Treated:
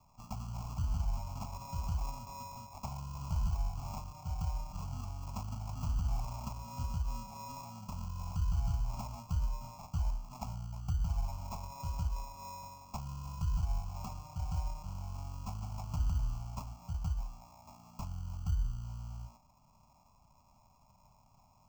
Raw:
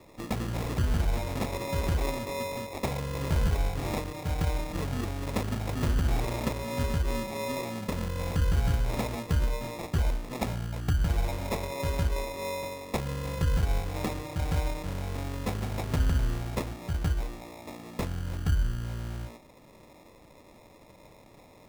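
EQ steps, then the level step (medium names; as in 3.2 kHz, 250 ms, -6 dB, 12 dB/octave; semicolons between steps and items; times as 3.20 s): static phaser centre 820 Hz, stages 4; static phaser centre 2.5 kHz, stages 8; -6.0 dB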